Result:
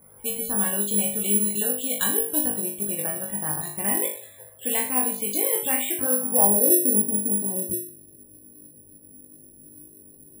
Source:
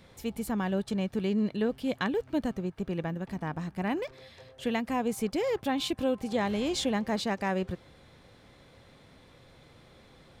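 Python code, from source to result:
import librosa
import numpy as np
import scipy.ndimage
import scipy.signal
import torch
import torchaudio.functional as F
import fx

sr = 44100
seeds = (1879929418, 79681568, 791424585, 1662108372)

p1 = fx.env_lowpass(x, sr, base_hz=1100.0, full_db=-27.0)
p2 = fx.low_shelf(p1, sr, hz=210.0, db=-7.0)
p3 = fx.level_steps(p2, sr, step_db=13)
p4 = p2 + (p3 * 10.0 ** (-1.0 / 20.0))
p5 = fx.filter_sweep_lowpass(p4, sr, from_hz=3800.0, to_hz=300.0, start_s=5.53, end_s=6.98, q=3.2)
p6 = fx.room_flutter(p5, sr, wall_m=3.4, rt60_s=0.48)
p7 = fx.spec_topn(p6, sr, count=64)
p8 = (np.kron(p7[::4], np.eye(4)[0]) * 4)[:len(p7)]
y = p8 * 10.0 ** (-4.5 / 20.0)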